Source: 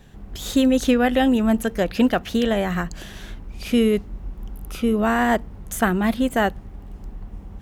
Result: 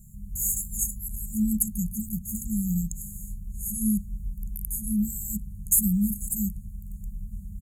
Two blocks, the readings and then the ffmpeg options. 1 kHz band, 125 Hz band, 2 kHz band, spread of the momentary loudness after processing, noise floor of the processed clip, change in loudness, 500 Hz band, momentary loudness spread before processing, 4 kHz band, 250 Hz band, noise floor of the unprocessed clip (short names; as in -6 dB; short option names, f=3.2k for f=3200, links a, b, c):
under -40 dB, -1.0 dB, under -40 dB, 16 LU, -42 dBFS, -7.0 dB, under -40 dB, 21 LU, under -40 dB, -8.0 dB, -41 dBFS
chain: -af "afftfilt=real='re*(1-between(b*sr/4096,220,6500))':imag='im*(1-between(b*sr/4096,220,6500))':win_size=4096:overlap=0.75,aresample=32000,aresample=44100,aemphasis=mode=production:type=50fm"